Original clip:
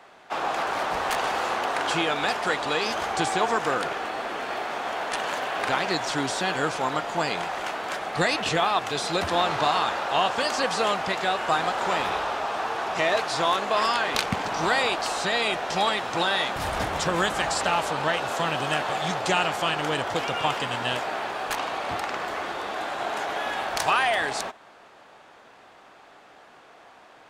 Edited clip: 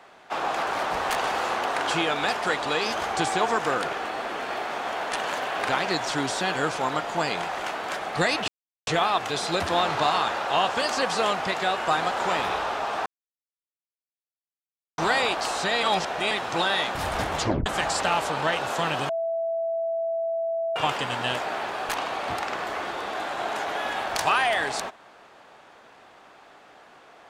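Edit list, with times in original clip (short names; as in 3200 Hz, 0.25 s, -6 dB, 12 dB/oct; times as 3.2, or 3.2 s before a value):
8.48 insert silence 0.39 s
12.67–14.59 mute
15.44–15.92 reverse
17 tape stop 0.27 s
18.7–20.37 bleep 662 Hz -24 dBFS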